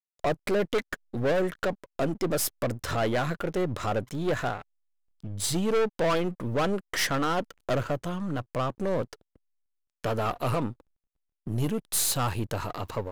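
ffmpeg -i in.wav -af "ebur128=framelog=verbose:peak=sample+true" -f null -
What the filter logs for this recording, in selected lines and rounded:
Integrated loudness:
  I:         -29.0 LUFS
  Threshold: -39.3 LUFS
Loudness range:
  LRA:         4.1 LU
  Threshold: -49.7 LUFS
  LRA low:   -32.3 LUFS
  LRA high:  -28.2 LUFS
Sample peak:
  Peak:      -18.8 dBFS
True peak:
  Peak:      -16.1 dBFS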